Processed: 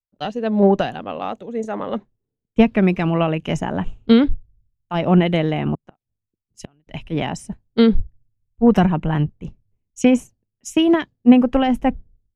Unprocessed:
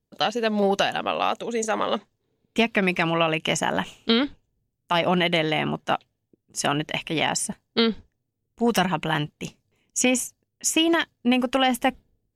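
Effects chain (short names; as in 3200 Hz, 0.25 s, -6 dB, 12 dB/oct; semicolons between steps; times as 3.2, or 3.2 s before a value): tilt -4 dB/oct; 5.74–6.87 flipped gate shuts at -13 dBFS, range -31 dB; three-band expander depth 100%; gain -1 dB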